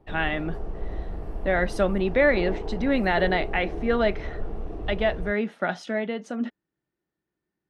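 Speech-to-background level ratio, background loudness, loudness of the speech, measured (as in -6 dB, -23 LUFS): 9.5 dB, -35.5 LUFS, -26.0 LUFS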